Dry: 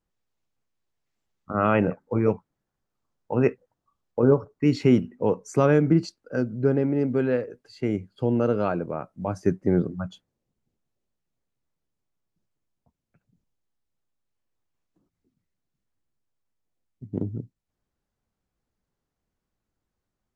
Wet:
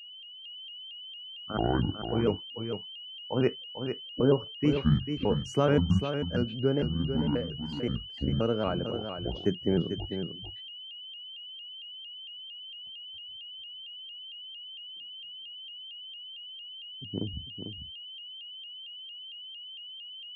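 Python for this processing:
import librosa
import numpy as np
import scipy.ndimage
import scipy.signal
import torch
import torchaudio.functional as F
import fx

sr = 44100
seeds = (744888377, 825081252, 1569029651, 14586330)

p1 = fx.pitch_trill(x, sr, semitones=-9.5, every_ms=525)
p2 = p1 + 10.0 ** (-39.0 / 20.0) * np.sin(2.0 * np.pi * 3000.0 * np.arange(len(p1)) / sr)
p3 = p2 + fx.echo_single(p2, sr, ms=446, db=-8.0, dry=0)
p4 = fx.vibrato_shape(p3, sr, shape='saw_up', rate_hz=4.4, depth_cents=100.0)
y = p4 * 10.0 ** (-5.0 / 20.0)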